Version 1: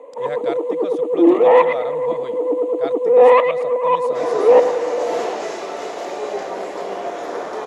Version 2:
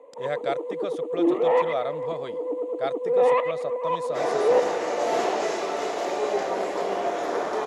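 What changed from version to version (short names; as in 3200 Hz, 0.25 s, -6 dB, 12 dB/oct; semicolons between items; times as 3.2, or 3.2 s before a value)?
first sound -9.5 dB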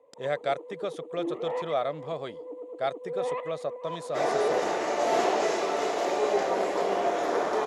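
first sound -11.5 dB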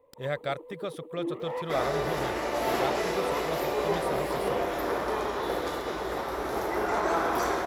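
second sound: entry -2.45 s; master: remove speaker cabinet 190–9200 Hz, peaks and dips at 450 Hz +4 dB, 700 Hz +6 dB, 6600 Hz +7 dB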